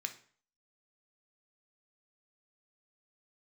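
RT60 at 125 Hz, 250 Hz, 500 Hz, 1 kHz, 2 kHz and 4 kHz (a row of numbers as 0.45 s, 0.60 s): 0.50 s, 0.45 s, 0.45 s, 0.50 s, 0.45 s, 0.40 s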